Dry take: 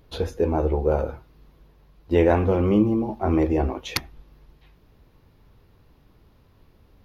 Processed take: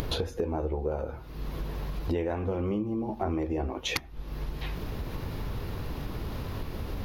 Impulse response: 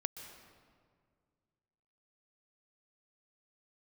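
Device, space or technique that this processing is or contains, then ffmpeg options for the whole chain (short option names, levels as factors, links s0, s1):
upward and downward compression: -af "acompressor=mode=upward:threshold=0.0631:ratio=2.5,acompressor=threshold=0.0224:ratio=8,volume=1.88"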